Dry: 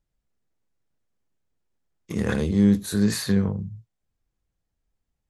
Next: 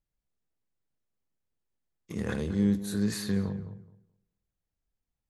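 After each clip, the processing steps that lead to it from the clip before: tape echo 0.212 s, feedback 21%, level -11 dB, low-pass 2000 Hz; gain -7.5 dB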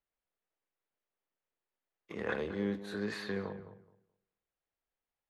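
three-band isolator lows -18 dB, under 360 Hz, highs -24 dB, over 3500 Hz; gain +2.5 dB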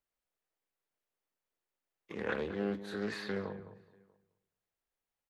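outdoor echo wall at 110 m, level -29 dB; Doppler distortion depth 0.28 ms

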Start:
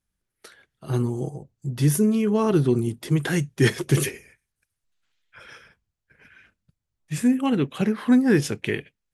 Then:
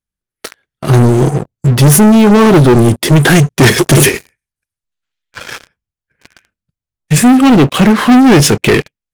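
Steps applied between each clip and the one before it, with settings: sample leveller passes 5; gain +4.5 dB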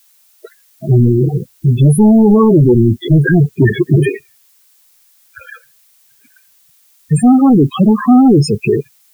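loudest bins only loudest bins 8; added noise blue -50 dBFS; gain -1.5 dB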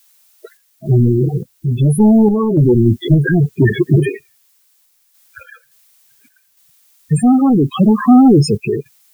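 random-step tremolo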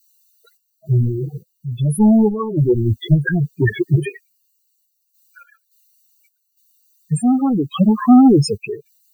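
per-bin expansion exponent 2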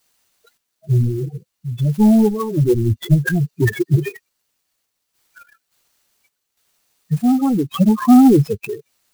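treble ducked by the level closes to 1800 Hz, closed at -9.5 dBFS; clock jitter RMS 0.026 ms

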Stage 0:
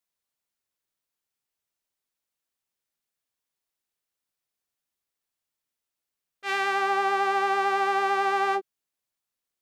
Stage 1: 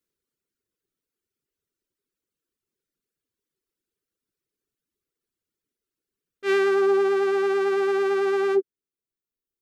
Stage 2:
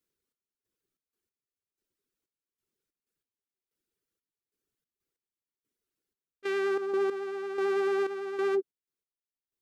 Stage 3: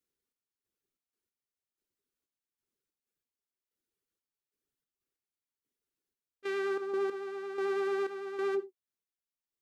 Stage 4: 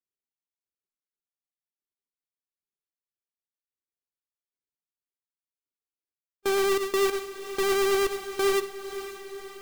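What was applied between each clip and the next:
resonant low shelf 540 Hz +9.5 dB, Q 3; reverb removal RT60 1.8 s; bell 1400 Hz +5 dB 0.5 oct
step gate "xx..xx.x...x" 93 bpm -12 dB; limiter -20.5 dBFS, peak gain reduction 9 dB; gain -1 dB
non-linear reverb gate 0.12 s falling, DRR 11.5 dB; gain -4 dB
half-waves squared off; gate with hold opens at -27 dBFS; diffused feedback echo 0.517 s, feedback 59%, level -12 dB; gain +4 dB

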